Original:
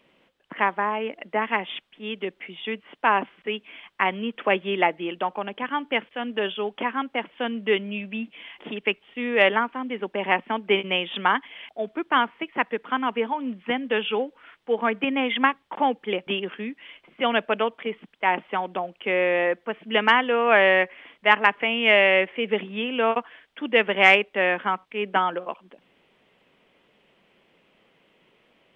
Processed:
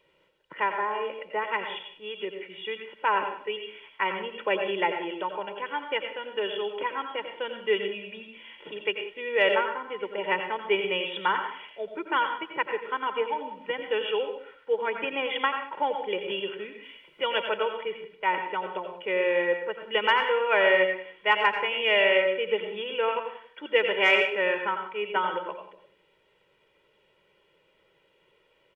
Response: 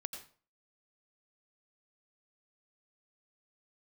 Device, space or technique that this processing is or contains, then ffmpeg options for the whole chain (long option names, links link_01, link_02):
microphone above a desk: -filter_complex "[0:a]aecho=1:1:2.1:0.84[link_01];[1:a]atrim=start_sample=2205[link_02];[link_01][link_02]afir=irnorm=-1:irlink=0,asettb=1/sr,asplit=3[link_03][link_04][link_05];[link_03]atrim=end=16.834[link_06];[link_04]atrim=start=16.83:end=17.48,asetpts=PTS-STARTPTS,afade=type=in:duration=0.004:curve=qsin,afade=type=out:start_time=0.646:duration=0.004:curve=qsin,aemphasis=mode=production:type=cd[link_07];[link_05]atrim=start=17.476[link_08];[link_06][link_07]acrossfade=duration=0.004:curve1=hsin:curve2=qsin[link_09];[link_09][link_08]acrossfade=duration=0.004:curve1=qsin:curve2=hsin,asplit=2[link_10][link_11];[link_11]adelay=186.6,volume=-18dB,highshelf=frequency=4000:gain=-4.2[link_12];[link_10][link_12]amix=inputs=2:normalize=0,volume=-4.5dB"